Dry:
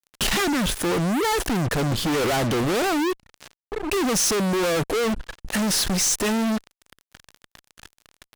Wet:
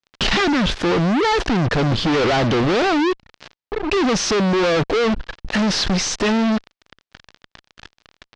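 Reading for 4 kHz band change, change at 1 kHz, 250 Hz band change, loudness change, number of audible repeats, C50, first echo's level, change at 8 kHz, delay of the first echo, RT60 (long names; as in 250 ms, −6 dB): +4.0 dB, +5.0 dB, +5.0 dB, +4.0 dB, no echo audible, no reverb audible, no echo audible, −4.5 dB, no echo audible, no reverb audible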